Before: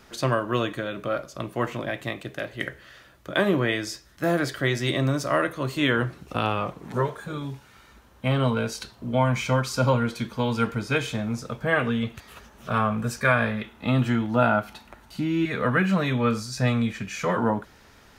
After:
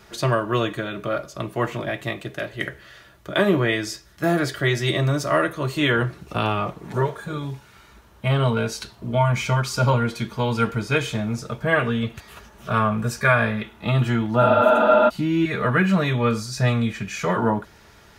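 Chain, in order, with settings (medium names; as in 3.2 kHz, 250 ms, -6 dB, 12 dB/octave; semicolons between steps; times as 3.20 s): spectral replace 14.45–15.06 s, 200–5900 Hz before; comb of notches 260 Hz; trim +4 dB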